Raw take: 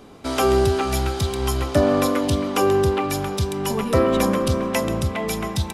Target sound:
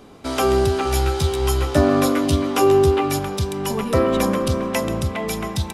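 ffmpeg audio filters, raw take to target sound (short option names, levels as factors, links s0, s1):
-filter_complex "[0:a]asettb=1/sr,asplit=3[s0][s1][s2];[s0]atrim=end=0.844[s3];[s1]atrim=start=0.84:end=3.19,asetpts=PTS-STARTPTS,afade=t=in:d=0.004:c=qsin,afade=t=out:st=2.346:d=0.004:c=qsin,asplit=2[s4][s5];[s5]adelay=13,volume=0.708[s6];[s4][s6]amix=inputs=2:normalize=0,atrim=end_sample=103635[s7];[s2]atrim=start=3.186[s8];[s3][s7]acrossfade=d=0.004:c1=hsin:c2=qsin[s9];[s9][s8]acrossfade=d=0.004:c1=qsin:c2=hsin"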